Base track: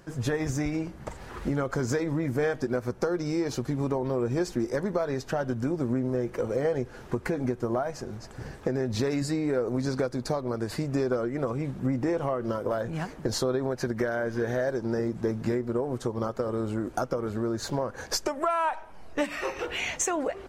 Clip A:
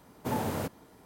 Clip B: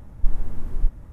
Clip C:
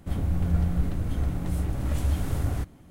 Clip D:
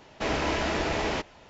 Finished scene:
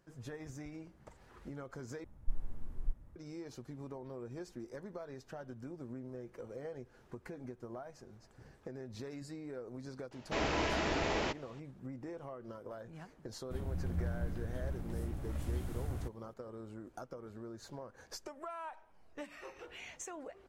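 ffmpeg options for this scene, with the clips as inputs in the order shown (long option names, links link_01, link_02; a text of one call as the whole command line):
ffmpeg -i bed.wav -i cue0.wav -i cue1.wav -i cue2.wav -i cue3.wav -filter_complex "[0:a]volume=-18dB,asplit=2[link_01][link_02];[link_01]atrim=end=2.044[link_03];[2:a]atrim=end=1.12,asetpts=PTS-STARTPTS,volume=-15.5dB[link_04];[link_02]atrim=start=3.156[link_05];[4:a]atrim=end=1.49,asetpts=PTS-STARTPTS,volume=-6dB,afade=type=in:duration=0.004:curve=hsin,afade=type=out:start_time=1.486:duration=0.004:curve=hsin,adelay=10110[link_06];[3:a]atrim=end=2.9,asetpts=PTS-STARTPTS,volume=-12.5dB,afade=type=in:duration=0.004:curve=hsin,afade=type=out:start_time=2.896:duration=0.004:curve=hsin,adelay=13440[link_07];[link_03][link_04]acrossfade=duration=0.004:curve1=hsin:curve2=hsin[link_08];[link_08][link_05]acrossfade=duration=0.004:curve1=hsin:curve2=hsin[link_09];[link_09][link_06][link_07]amix=inputs=3:normalize=0" out.wav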